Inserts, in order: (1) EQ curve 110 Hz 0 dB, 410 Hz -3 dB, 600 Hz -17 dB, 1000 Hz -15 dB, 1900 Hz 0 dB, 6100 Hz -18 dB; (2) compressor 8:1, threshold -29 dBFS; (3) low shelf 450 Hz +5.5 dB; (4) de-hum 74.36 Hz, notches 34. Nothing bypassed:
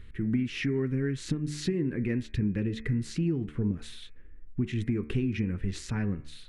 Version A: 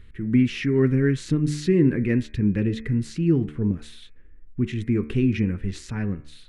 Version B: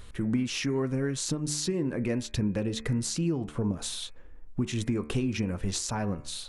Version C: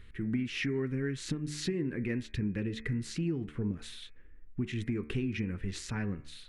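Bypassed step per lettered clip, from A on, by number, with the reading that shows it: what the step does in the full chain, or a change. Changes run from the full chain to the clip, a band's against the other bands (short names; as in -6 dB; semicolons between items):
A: 2, mean gain reduction 4.5 dB; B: 1, 8 kHz band +13.0 dB; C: 3, momentary loudness spread change +1 LU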